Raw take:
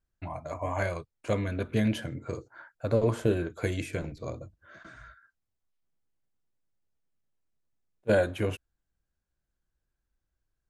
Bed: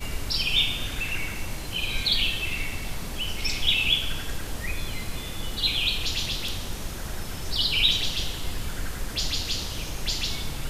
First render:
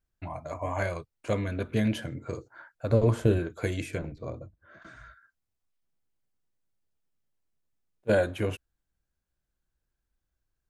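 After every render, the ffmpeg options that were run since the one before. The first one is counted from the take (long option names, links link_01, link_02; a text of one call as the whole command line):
ffmpeg -i in.wav -filter_complex "[0:a]asettb=1/sr,asplit=3[link_01][link_02][link_03];[link_01]atrim=end=2.904[link_04];[link_02]atrim=start=2.9:end=3.39,asetpts=PTS-STARTPTS,afade=type=in:duration=0.004:curve=qsin,afade=type=out:start_time=0.486:duration=0.004:curve=qsin,lowshelf=frequency=140:gain=9[link_05];[link_03]atrim=start=3.386[link_06];[link_04][link_05]acrossfade=duration=0.004:curve1=hsin:curve2=qsin[link_07];[link_07][link_06]acrossfade=duration=0.004:curve1=qsin:curve2=hsin,asettb=1/sr,asplit=3[link_08][link_09][link_10];[link_08]atrim=end=3.984[link_11];[link_09]atrim=start=3.98:end=4.82,asetpts=PTS-STARTPTS,afade=type=in:duration=0.004:curve=qsin,afade=type=out:start_time=0.836:duration=0.004:curve=qsin,lowpass=frequency=1800:poles=1[link_12];[link_10]atrim=start=4.816[link_13];[link_11][link_12]acrossfade=duration=0.004:curve1=hsin:curve2=qsin[link_14];[link_14][link_13]acrossfade=duration=0.004:curve1=qsin:curve2=hsin" out.wav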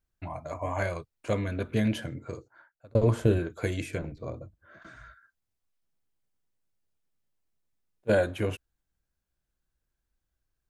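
ffmpeg -i in.wav -filter_complex "[0:a]asplit=2[link_01][link_02];[link_01]atrim=end=2.95,asetpts=PTS-STARTPTS,afade=type=out:start_time=2.07:duration=0.88[link_03];[link_02]atrim=start=2.95,asetpts=PTS-STARTPTS,afade=type=in:duration=0.004:curve=hsin[link_04];[link_03][link_04]concat=n=2:v=0:a=1" out.wav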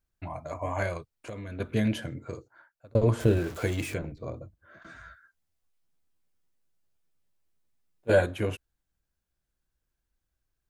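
ffmpeg -i in.wav -filter_complex "[0:a]asettb=1/sr,asplit=3[link_01][link_02][link_03];[link_01]atrim=end=0.974[link_04];[link_02]atrim=start=0.97:end=1.6,asetpts=PTS-STARTPTS,afade=type=in:duration=0.004:curve=qsin,afade=type=out:start_time=0.626:duration=0.004:curve=qsin,acompressor=threshold=-35dB:ratio=8:attack=3.2:release=140:knee=1:detection=peak[link_05];[link_03]atrim=start=1.596[link_06];[link_04][link_05]acrossfade=duration=0.004:curve1=hsin:curve2=qsin[link_07];[link_07][link_06]acrossfade=duration=0.004:curve1=qsin:curve2=hsin,asettb=1/sr,asplit=3[link_08][link_09][link_10];[link_08]atrim=end=3.204[link_11];[link_09]atrim=start=3.2:end=3.94,asetpts=PTS-STARTPTS,afade=type=in:duration=0.004:curve=qsin,afade=type=out:start_time=0.736:duration=0.004:curve=qsin,aeval=exprs='val(0)+0.5*0.0141*sgn(val(0))':channel_layout=same[link_12];[link_10]atrim=start=3.936[link_13];[link_11][link_12]acrossfade=duration=0.004:curve1=hsin:curve2=qsin[link_14];[link_14][link_13]acrossfade=duration=0.004:curve1=qsin:curve2=hsin,asettb=1/sr,asplit=3[link_15][link_16][link_17];[link_15]atrim=end=4.884[link_18];[link_16]atrim=start=4.88:end=8.26,asetpts=PTS-STARTPTS,afade=type=in:duration=0.004:curve=qsin,afade=type=out:start_time=3.376:duration=0.004:curve=qsin,asplit=2[link_19][link_20];[link_20]adelay=12,volume=-2dB[link_21];[link_19][link_21]amix=inputs=2:normalize=0,atrim=end_sample=149058[link_22];[link_17]atrim=start=8.256[link_23];[link_18][link_22]acrossfade=duration=0.004:curve1=hsin:curve2=qsin[link_24];[link_24][link_23]acrossfade=duration=0.004:curve1=qsin:curve2=hsin" out.wav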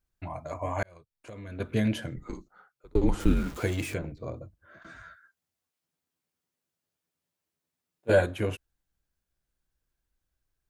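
ffmpeg -i in.wav -filter_complex "[0:a]asettb=1/sr,asplit=3[link_01][link_02][link_03];[link_01]atrim=end=2.164[link_04];[link_02]atrim=start=2.16:end=3.6,asetpts=PTS-STARTPTS,afade=type=in:duration=0.004:curve=qsin,afade=type=out:start_time=1.436:duration=0.004:curve=qsin,afreqshift=-140[link_05];[link_03]atrim=start=3.596[link_06];[link_04][link_05]acrossfade=duration=0.004:curve1=hsin:curve2=qsin[link_07];[link_07][link_06]acrossfade=duration=0.004:curve1=qsin:curve2=hsin,asettb=1/sr,asplit=3[link_08][link_09][link_10];[link_08]atrim=end=5.024[link_11];[link_09]atrim=start=5.02:end=8.09,asetpts=PTS-STARTPTS,afade=type=in:duration=0.004:curve=qsin,afade=type=out:start_time=3.066:duration=0.004:curve=qsin,highpass=120[link_12];[link_10]atrim=start=8.086[link_13];[link_11][link_12]acrossfade=duration=0.004:curve1=hsin:curve2=qsin[link_14];[link_14][link_13]acrossfade=duration=0.004:curve1=qsin:curve2=hsin,asplit=2[link_15][link_16];[link_15]atrim=end=0.83,asetpts=PTS-STARTPTS,afade=type=out:start_time=0.826:duration=0.004:curve=hsin[link_17];[link_16]atrim=start=0.83,asetpts=PTS-STARTPTS,afade=type=in:duration=0.82[link_18];[link_17][link_18]concat=n=2:v=0:a=1" out.wav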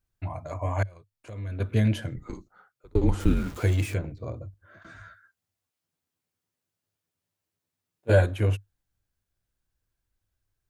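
ffmpeg -i in.wav -af "equalizer=frequency=100:width=3.8:gain=11.5" out.wav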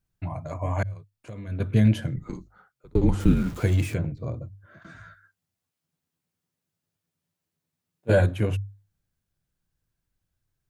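ffmpeg -i in.wav -af "equalizer=frequency=160:width=1.4:gain=9,bandreject=frequency=50:width_type=h:width=6,bandreject=frequency=100:width_type=h:width=6" out.wav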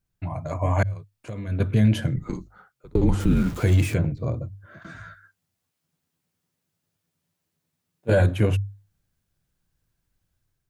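ffmpeg -i in.wav -af "dynaudnorm=framelen=150:gausssize=5:maxgain=5dB,alimiter=limit=-10.5dB:level=0:latency=1:release=27" out.wav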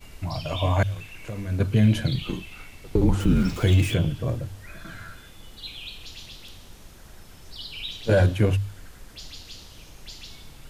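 ffmpeg -i in.wav -i bed.wav -filter_complex "[1:a]volume=-13.5dB[link_01];[0:a][link_01]amix=inputs=2:normalize=0" out.wav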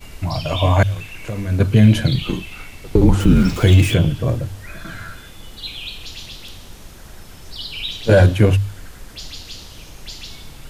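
ffmpeg -i in.wav -af "volume=7.5dB" out.wav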